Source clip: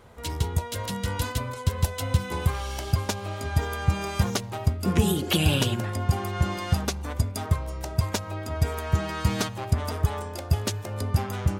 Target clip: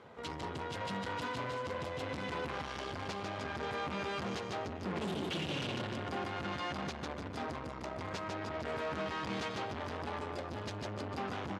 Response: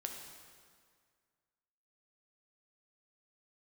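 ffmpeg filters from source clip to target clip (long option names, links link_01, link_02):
-filter_complex "[0:a]asplit=2[link_01][link_02];[link_02]aecho=0:1:151|302|453|604|755|906:0.447|0.21|0.0987|0.0464|0.0218|0.0102[link_03];[link_01][link_03]amix=inputs=2:normalize=0,aeval=exprs='(tanh(50.1*val(0)+0.55)-tanh(0.55))/50.1':channel_layout=same,highpass=170,lowpass=3900,volume=1dB"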